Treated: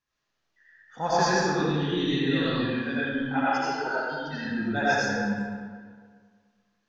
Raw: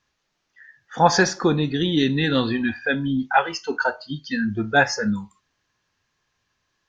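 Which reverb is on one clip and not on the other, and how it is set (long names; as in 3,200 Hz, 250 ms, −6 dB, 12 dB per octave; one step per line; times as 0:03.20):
comb and all-pass reverb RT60 1.8 s, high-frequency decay 0.7×, pre-delay 45 ms, DRR −9.5 dB
level −14.5 dB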